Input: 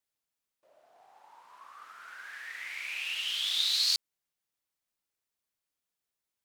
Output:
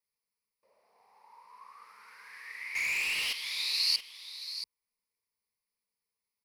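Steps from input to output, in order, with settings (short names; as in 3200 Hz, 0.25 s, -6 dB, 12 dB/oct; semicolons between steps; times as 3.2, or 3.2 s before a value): ripple EQ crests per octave 0.88, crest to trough 14 dB; 2.75–3.33 sample leveller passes 3; on a send: echo 0.679 s -11 dB; on the sum: gain -5 dB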